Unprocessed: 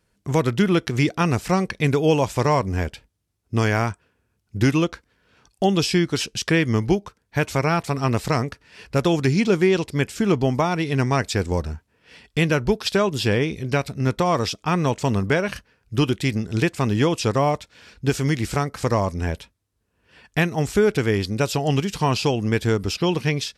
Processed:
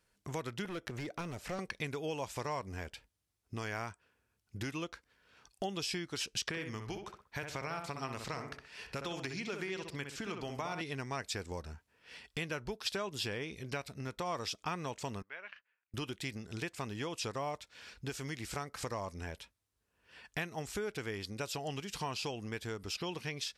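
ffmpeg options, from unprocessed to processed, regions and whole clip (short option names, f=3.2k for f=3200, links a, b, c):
-filter_complex "[0:a]asettb=1/sr,asplit=3[a][b][c];[a]atrim=end=0.654[d];[b]atrim=start=0.65:end=1.59,asetpts=PTS-STARTPTS,afade=t=in:d=0.004:c=qsin,afade=t=out:st=0.936:d=0.004:c=qsin,equalizer=f=580:w=5.6:g=7.5,acrossover=split=650|2600|5400[e][f][g][h];[e]acompressor=threshold=-20dB:ratio=3[i];[f]acompressor=threshold=-31dB:ratio=3[j];[g]acompressor=threshold=-49dB:ratio=3[k];[h]acompressor=threshold=-50dB:ratio=3[l];[i][j][k][l]amix=inputs=4:normalize=0,asoftclip=type=hard:threshold=-18.5dB[m];[c]atrim=start=1.586[n];[d][m]acrossfade=d=0.004:c1=hsin:c2=qsin[o];[o][n]acrossfade=d=0.004:c1=qsin:c2=hsin,asettb=1/sr,asplit=3[p][q][r];[p]atrim=end=6.414[s];[q]atrim=start=6.41:end=10.81,asetpts=PTS-STARTPTS,afade=t=in:d=0.004:c=qsin,afade=t=out:st=4.396:d=0.004:c=qsin,acrossover=split=1000|6500[t][u][v];[t]acompressor=threshold=-23dB:ratio=4[w];[u]acompressor=threshold=-28dB:ratio=4[x];[v]acompressor=threshold=-51dB:ratio=4[y];[w][x][y]amix=inputs=3:normalize=0,asplit=2[z][aa];[aa]adelay=63,lowpass=f=2.1k:p=1,volume=-6dB,asplit=2[ab][ac];[ac]adelay=63,lowpass=f=2.1k:p=1,volume=0.34,asplit=2[ad][ae];[ae]adelay=63,lowpass=f=2.1k:p=1,volume=0.34,asplit=2[af][ag];[ag]adelay=63,lowpass=f=2.1k:p=1,volume=0.34[ah];[z][ab][ad][af][ah]amix=inputs=5:normalize=0,atrim=end_sample=194040[ai];[r]atrim=start=10.806[aj];[s][ai]acrossfade=d=0.004:c1=hsin:c2=qsin[ak];[ak][aj]acrossfade=d=0.004:c1=qsin:c2=hsin,asettb=1/sr,asplit=3[al][am][an];[al]atrim=end=15.224[ao];[am]atrim=start=15.22:end=15.94,asetpts=PTS-STARTPTS,afade=t=in:d=0.004:c=qsin,afade=t=out:st=0.716:d=0.004:c=qsin,lowpass=f=2.4k:w=0.5412,lowpass=f=2.4k:w=1.3066,aderivative[ap];[an]atrim=start=15.936[aq];[ao][ap]acrossfade=d=0.004:c1=hsin:c2=qsin[ar];[ar][aq]acrossfade=d=0.004:c1=qsin:c2=hsin,lowshelf=f=60:g=7,acompressor=threshold=-29dB:ratio=3,lowshelf=f=410:g=-10.5,volume=-4dB"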